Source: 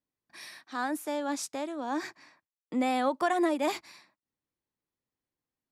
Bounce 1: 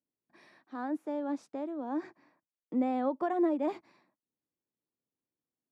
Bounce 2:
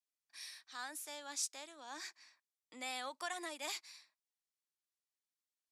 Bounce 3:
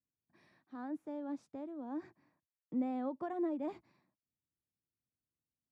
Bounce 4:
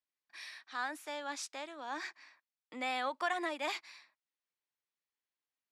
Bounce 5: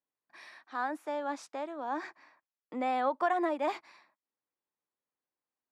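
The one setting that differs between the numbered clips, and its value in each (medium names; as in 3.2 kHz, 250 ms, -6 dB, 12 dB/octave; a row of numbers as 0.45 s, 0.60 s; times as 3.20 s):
band-pass filter, frequency: 300 Hz, 6.8 kHz, 100 Hz, 2.6 kHz, 950 Hz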